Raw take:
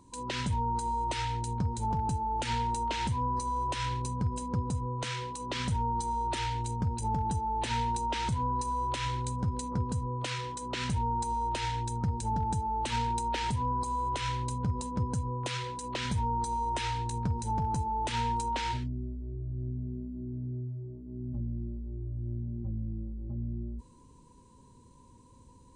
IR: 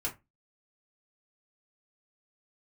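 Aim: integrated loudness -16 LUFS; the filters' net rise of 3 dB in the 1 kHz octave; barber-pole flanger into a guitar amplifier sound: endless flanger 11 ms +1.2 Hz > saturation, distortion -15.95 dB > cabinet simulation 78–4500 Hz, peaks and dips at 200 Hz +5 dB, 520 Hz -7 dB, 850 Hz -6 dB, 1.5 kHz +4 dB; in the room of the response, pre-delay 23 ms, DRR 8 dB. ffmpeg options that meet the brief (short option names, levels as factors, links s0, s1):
-filter_complex "[0:a]equalizer=f=1000:t=o:g=7,asplit=2[s0][s1];[1:a]atrim=start_sample=2205,adelay=23[s2];[s1][s2]afir=irnorm=-1:irlink=0,volume=0.282[s3];[s0][s3]amix=inputs=2:normalize=0,asplit=2[s4][s5];[s5]adelay=11,afreqshift=1.2[s6];[s4][s6]amix=inputs=2:normalize=1,asoftclip=threshold=0.0596,highpass=78,equalizer=f=200:t=q:w=4:g=5,equalizer=f=520:t=q:w=4:g=-7,equalizer=f=850:t=q:w=4:g=-6,equalizer=f=1500:t=q:w=4:g=4,lowpass=f=4500:w=0.5412,lowpass=f=4500:w=1.3066,volume=9.44"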